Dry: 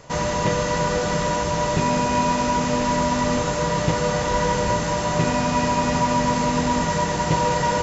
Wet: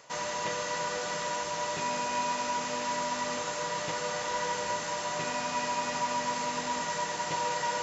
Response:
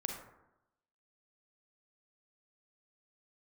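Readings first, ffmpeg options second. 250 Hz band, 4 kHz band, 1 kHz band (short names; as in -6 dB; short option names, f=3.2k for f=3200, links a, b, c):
-19.0 dB, -6.5 dB, -9.0 dB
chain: -af "highpass=f=1k:p=1,areverse,acompressor=mode=upward:threshold=-27dB:ratio=2.5,areverse,volume=-6dB"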